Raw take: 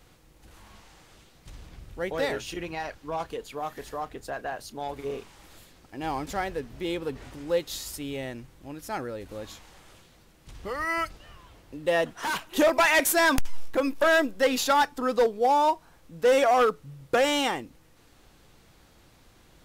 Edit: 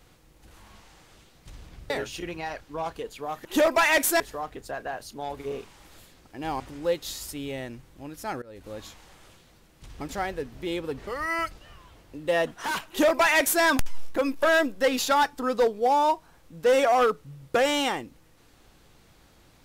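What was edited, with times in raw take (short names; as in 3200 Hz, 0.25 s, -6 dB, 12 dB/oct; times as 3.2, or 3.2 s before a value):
1.9–2.24 cut
6.19–7.25 move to 10.66
9.07–9.49 fade in equal-power, from -21 dB
12.47–13.22 copy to 3.79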